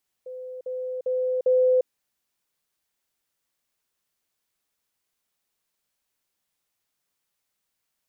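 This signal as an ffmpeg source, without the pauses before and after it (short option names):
-f lavfi -i "aevalsrc='pow(10,(-34+6*floor(t/0.4))/20)*sin(2*PI*509*t)*clip(min(mod(t,0.4),0.35-mod(t,0.4))/0.005,0,1)':d=1.6:s=44100"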